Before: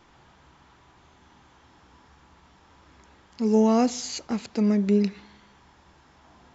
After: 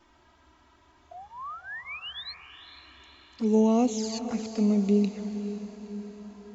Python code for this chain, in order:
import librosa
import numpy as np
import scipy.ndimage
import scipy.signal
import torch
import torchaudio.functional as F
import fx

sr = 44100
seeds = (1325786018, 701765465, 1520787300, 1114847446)

y = fx.spec_paint(x, sr, seeds[0], shape='rise', start_s=1.11, length_s=1.23, low_hz=660.0, high_hz=4400.0, level_db=-35.0)
y = fx.env_flanger(y, sr, rest_ms=3.3, full_db=-21.5)
y = fx.echo_diffused(y, sr, ms=470, feedback_pct=54, wet_db=-11.0)
y = F.gain(torch.from_numpy(y), -1.5).numpy()